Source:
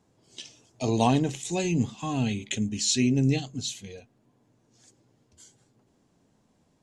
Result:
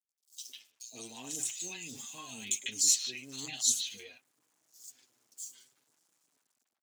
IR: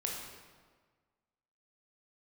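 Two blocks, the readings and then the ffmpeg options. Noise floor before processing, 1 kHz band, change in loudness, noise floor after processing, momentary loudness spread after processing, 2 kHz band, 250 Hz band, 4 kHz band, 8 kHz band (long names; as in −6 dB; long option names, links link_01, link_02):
−68 dBFS, −21.5 dB, −5.0 dB, below −85 dBFS, 21 LU, −7.0 dB, −24.5 dB, −2.5 dB, +4.0 dB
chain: -filter_complex "[0:a]dynaudnorm=framelen=610:gausssize=5:maxgain=8dB,flanger=delay=5.8:depth=3.4:regen=0:speed=0.67:shape=triangular,equalizer=frequency=270:width=0.88:gain=6,aeval=exprs='0.501*(cos(1*acos(clip(val(0)/0.501,-1,1)))-cos(1*PI/2))+0.0631*(cos(2*acos(clip(val(0)/0.501,-1,1)))-cos(2*PI/2))':channel_layout=same,areverse,acompressor=threshold=-26dB:ratio=5,areverse,aeval=exprs='sgn(val(0))*max(abs(val(0))-0.00112,0)':channel_layout=same,aderivative,acrossover=split=710|3800[link_01][link_02][link_03];[link_01]adelay=110[link_04];[link_02]adelay=150[link_05];[link_04][link_05][link_03]amix=inputs=3:normalize=0,volume=8dB"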